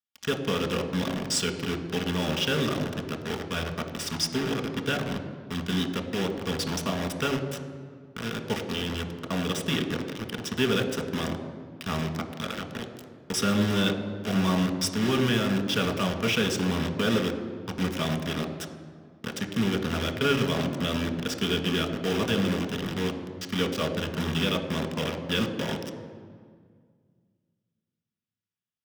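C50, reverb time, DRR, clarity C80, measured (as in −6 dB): 9.0 dB, 1.9 s, 4.5 dB, 10.0 dB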